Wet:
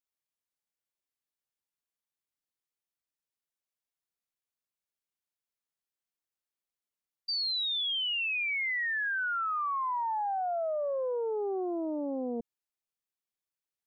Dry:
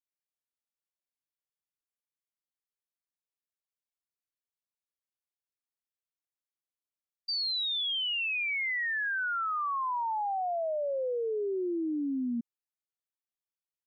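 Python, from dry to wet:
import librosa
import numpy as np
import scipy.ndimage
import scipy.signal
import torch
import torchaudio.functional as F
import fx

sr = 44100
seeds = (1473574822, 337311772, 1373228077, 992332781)

y = fx.high_shelf_res(x, sr, hz=1900.0, db=9.0, q=1.5, at=(11.62, 12.09), fade=0.02)
y = fx.doppler_dist(y, sr, depth_ms=0.8)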